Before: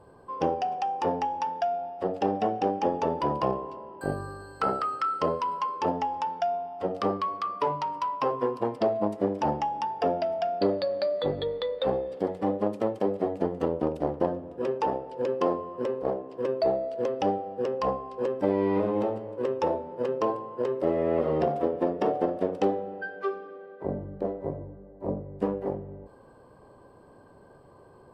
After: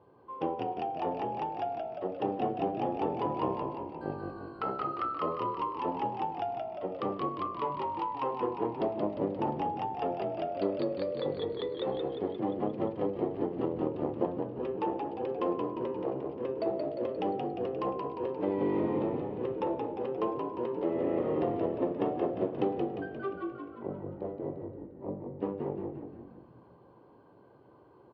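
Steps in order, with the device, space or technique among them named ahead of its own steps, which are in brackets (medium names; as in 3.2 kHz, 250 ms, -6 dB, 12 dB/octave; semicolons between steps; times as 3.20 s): frequency-shifting delay pedal into a guitar cabinet (frequency-shifting echo 176 ms, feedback 58%, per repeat -53 Hz, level -4 dB; cabinet simulation 94–3600 Hz, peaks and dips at 120 Hz +5 dB, 330 Hz +5 dB, 630 Hz -3 dB, 1.6 kHz -6 dB); bass shelf 480 Hz -4 dB; trim -5 dB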